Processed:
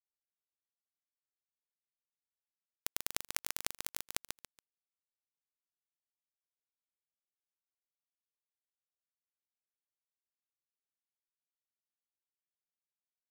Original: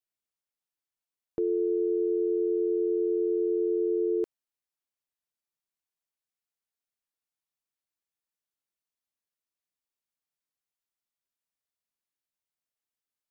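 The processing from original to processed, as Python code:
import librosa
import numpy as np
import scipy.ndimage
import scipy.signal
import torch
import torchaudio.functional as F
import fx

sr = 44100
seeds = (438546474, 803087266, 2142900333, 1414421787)

y = scipy.signal.sosfilt(scipy.signal.butter(2, 67.0, 'highpass', fs=sr, output='sos'), x)
y = fx.tilt_shelf(y, sr, db=4.0, hz=680.0)
y = fx.notch(y, sr, hz=660.0, q=12.0)
y = (np.mod(10.0 ** (32.5 / 20.0) * y + 1.0, 2.0) - 1.0) / 10.0 ** (32.5 / 20.0)
y = fx.filter_sweep_lowpass(y, sr, from_hz=160.0, to_hz=380.0, start_s=1.96, end_s=3.04, q=0.92)
y = fx.spec_topn(y, sr, count=8)
y = y * np.sin(2.0 * np.pi * 1900.0 * np.arange(len(y)) / sr)
y = fx.quant_companded(y, sr, bits=2)
y = fx.echo_feedback(y, sr, ms=141, feedback_pct=25, wet_db=-6)
y = F.gain(torch.from_numpy(y), 18.0).numpy()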